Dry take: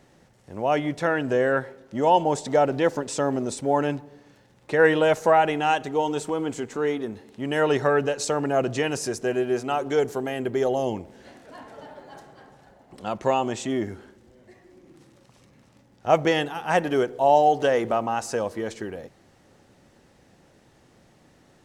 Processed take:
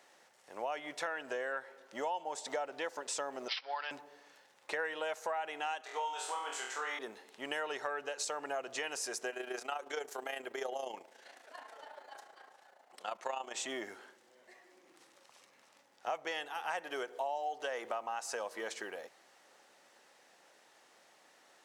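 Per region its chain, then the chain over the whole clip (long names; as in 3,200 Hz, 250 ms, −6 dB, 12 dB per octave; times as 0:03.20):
0:03.48–0:03.91: high-pass filter 1,100 Hz + high-shelf EQ 7,100 Hz +11.5 dB + bad sample-rate conversion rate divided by 4×, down none, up filtered
0:05.81–0:06.99: high-pass filter 630 Hz + high-shelf EQ 9,600 Hz −5.5 dB + flutter between parallel walls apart 4.1 metres, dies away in 0.52 s
0:09.30–0:13.56: low-shelf EQ 210 Hz −7.5 dB + notch filter 970 Hz, Q 28 + amplitude modulation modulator 28 Hz, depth 45%
whole clip: high-pass filter 730 Hz 12 dB per octave; downward compressor 6 to 1, threshold −34 dBFS; level −1 dB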